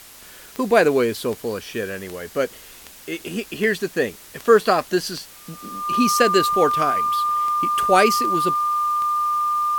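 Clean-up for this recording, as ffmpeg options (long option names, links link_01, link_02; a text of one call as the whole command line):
ffmpeg -i in.wav -af "adeclick=threshold=4,bandreject=frequency=1200:width=30,afwtdn=0.0071" out.wav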